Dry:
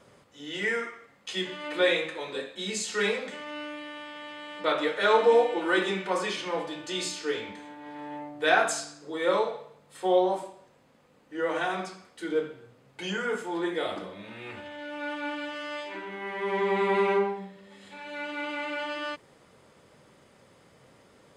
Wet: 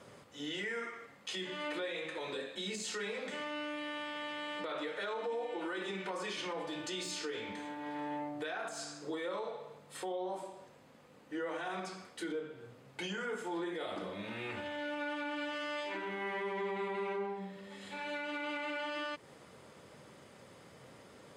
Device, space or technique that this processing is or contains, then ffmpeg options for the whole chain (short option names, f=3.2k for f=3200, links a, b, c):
podcast mastering chain: -af "highpass=63,deesser=0.75,acompressor=threshold=-38dB:ratio=3,alimiter=level_in=8dB:limit=-24dB:level=0:latency=1:release=43,volume=-8dB,volume=2dB" -ar 48000 -c:a libmp3lame -b:a 96k